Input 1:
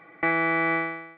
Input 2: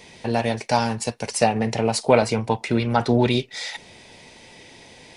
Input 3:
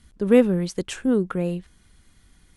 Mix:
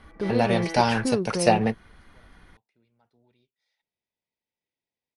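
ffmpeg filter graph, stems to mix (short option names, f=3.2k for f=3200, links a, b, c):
-filter_complex "[0:a]lowpass=1.9k,asoftclip=type=tanh:threshold=-28.5dB,asplit=2[a][b];[b]adelay=4.9,afreqshift=2.3[c];[a][c]amix=inputs=2:normalize=1,volume=-1.5dB[d];[1:a]adelay=50,volume=-0.5dB[e];[2:a]equalizer=f=1.1k:w=0.43:g=11,acompressor=threshold=-23dB:ratio=3,volume=2dB,asplit=2[f][g];[g]apad=whole_len=229831[h];[e][h]sidechaingate=range=-47dB:threshold=-41dB:ratio=16:detection=peak[i];[d][f]amix=inputs=2:normalize=0,highshelf=f=3.4k:g=-9.5,alimiter=limit=-18.5dB:level=0:latency=1,volume=0dB[j];[i][j]amix=inputs=2:normalize=0,equalizer=f=7.5k:w=4.2:g=-12.5"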